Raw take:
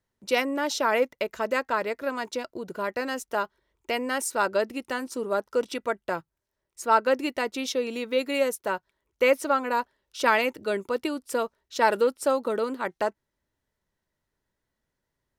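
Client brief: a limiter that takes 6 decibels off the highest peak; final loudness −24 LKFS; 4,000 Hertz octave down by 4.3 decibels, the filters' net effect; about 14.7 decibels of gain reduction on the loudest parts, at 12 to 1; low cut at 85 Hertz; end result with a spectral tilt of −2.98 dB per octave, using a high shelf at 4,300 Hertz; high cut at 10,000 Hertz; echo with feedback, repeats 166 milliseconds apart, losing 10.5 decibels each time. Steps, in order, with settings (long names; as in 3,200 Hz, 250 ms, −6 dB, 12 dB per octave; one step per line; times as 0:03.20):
high-pass filter 85 Hz
low-pass filter 10,000 Hz
parametric band 4,000 Hz −3.5 dB
high-shelf EQ 4,300 Hz −4.5 dB
downward compressor 12 to 1, threshold −32 dBFS
brickwall limiter −27 dBFS
repeating echo 166 ms, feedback 30%, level −10.5 dB
level +14.5 dB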